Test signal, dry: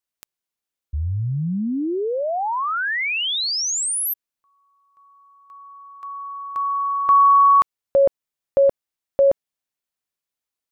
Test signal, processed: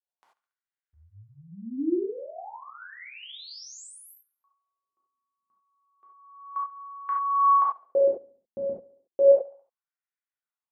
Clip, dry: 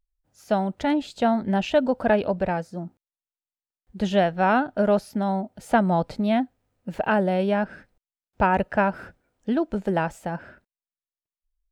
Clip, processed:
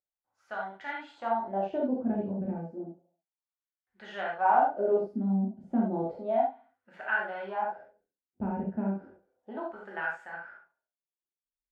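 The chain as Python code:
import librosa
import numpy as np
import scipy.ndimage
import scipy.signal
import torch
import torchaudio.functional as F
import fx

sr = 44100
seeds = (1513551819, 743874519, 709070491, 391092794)

y = fx.echo_feedback(x, sr, ms=70, feedback_pct=52, wet_db=-20.0)
y = fx.wah_lfo(y, sr, hz=0.32, low_hz=210.0, high_hz=1700.0, q=2.9)
y = fx.rev_gated(y, sr, seeds[0], gate_ms=110, shape='flat', drr_db=-4.0)
y = F.gain(torch.from_numpy(y), -5.0).numpy()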